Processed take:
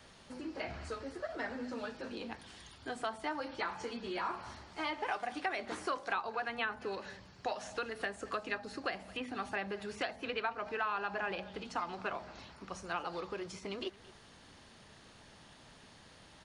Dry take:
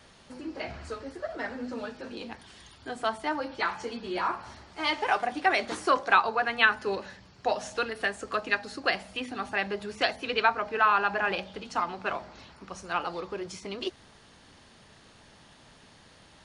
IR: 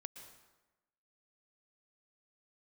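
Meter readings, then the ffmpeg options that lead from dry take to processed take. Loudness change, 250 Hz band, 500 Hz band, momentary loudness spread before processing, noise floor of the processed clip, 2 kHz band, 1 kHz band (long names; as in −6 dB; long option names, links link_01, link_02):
−10.5 dB, −6.0 dB, −8.0 dB, 17 LU, −58 dBFS, −11.0 dB, −10.5 dB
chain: -filter_complex "[0:a]acrossover=split=980|2500[link_01][link_02][link_03];[link_01]acompressor=threshold=-36dB:ratio=4[link_04];[link_02]acompressor=threshold=-38dB:ratio=4[link_05];[link_03]acompressor=threshold=-47dB:ratio=4[link_06];[link_04][link_05][link_06]amix=inputs=3:normalize=0,aecho=1:1:222:0.0891,volume=-2.5dB"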